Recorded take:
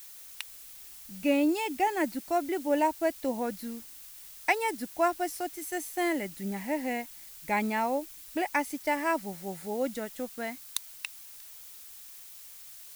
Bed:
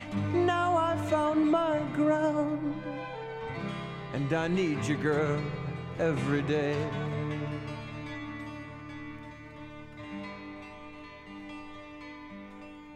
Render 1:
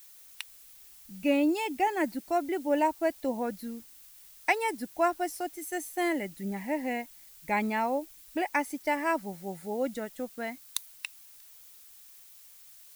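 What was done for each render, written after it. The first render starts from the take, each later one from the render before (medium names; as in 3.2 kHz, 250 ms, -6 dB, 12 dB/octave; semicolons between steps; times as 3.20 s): noise reduction 6 dB, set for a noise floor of -48 dBFS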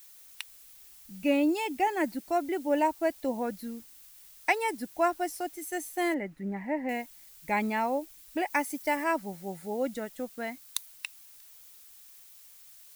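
6.14–6.89 s: FFT filter 2 kHz 0 dB, 3.1 kHz -11 dB, 14 kHz -21 dB; 8.50–9.04 s: treble shelf 7.2 kHz +6.5 dB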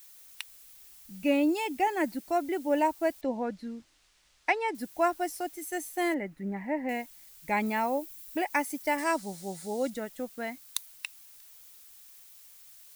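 3.21–4.75 s: distance through air 110 m; 7.66–8.45 s: treble shelf 11 kHz +7.5 dB; 8.98–9.90 s: high-order bell 5.9 kHz +9 dB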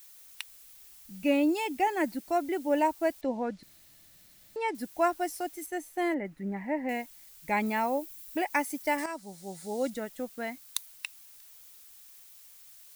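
3.63–4.56 s: room tone; 5.66–6.25 s: treble shelf 3.2 kHz -9 dB; 9.06–9.84 s: fade in, from -12 dB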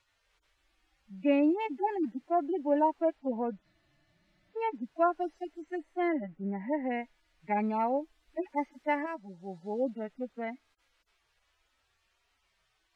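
harmonic-percussive separation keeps harmonic; low-pass 2.4 kHz 12 dB/octave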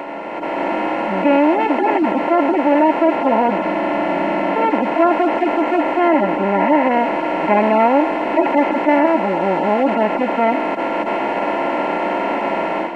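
spectral levelling over time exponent 0.2; level rider gain up to 9.5 dB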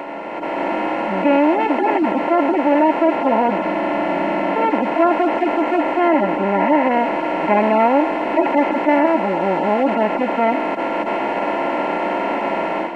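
trim -1 dB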